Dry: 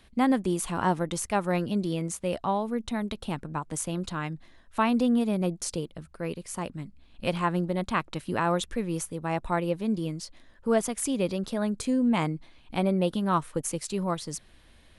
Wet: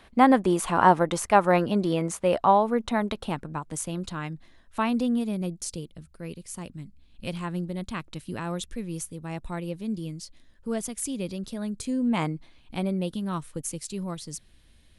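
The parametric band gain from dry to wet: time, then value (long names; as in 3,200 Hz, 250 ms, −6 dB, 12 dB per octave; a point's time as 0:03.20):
parametric band 910 Hz 2.9 octaves
0:03.05 +9.5 dB
0:03.63 −2 dB
0:04.85 −2 dB
0:05.61 −10 dB
0:11.77 −10 dB
0:12.23 +0.5 dB
0:13.14 −9.5 dB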